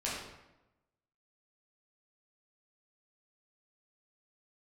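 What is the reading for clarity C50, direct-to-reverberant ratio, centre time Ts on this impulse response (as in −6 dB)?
1.0 dB, −7.5 dB, 64 ms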